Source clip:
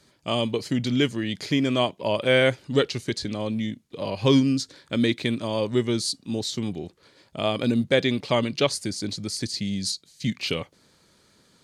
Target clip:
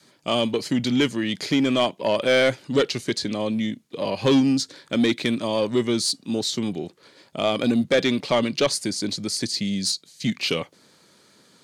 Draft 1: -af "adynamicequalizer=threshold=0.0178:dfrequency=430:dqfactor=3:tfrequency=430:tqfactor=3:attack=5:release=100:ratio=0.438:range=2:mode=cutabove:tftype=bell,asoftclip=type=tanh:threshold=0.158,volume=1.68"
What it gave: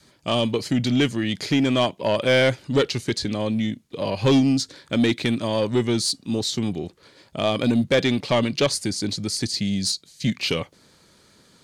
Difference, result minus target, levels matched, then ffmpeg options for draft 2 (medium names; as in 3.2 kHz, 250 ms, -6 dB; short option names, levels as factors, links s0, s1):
125 Hz band +5.0 dB
-af "adynamicequalizer=threshold=0.0178:dfrequency=430:dqfactor=3:tfrequency=430:tqfactor=3:attack=5:release=100:ratio=0.438:range=2:mode=cutabove:tftype=bell,highpass=160,asoftclip=type=tanh:threshold=0.158,volume=1.68"